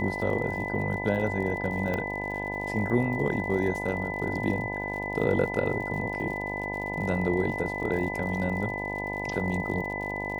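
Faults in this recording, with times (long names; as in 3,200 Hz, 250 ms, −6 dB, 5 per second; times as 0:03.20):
mains buzz 50 Hz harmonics 20 −35 dBFS
surface crackle 75 per second −37 dBFS
whistle 2,000 Hz −33 dBFS
0:01.94: click −18 dBFS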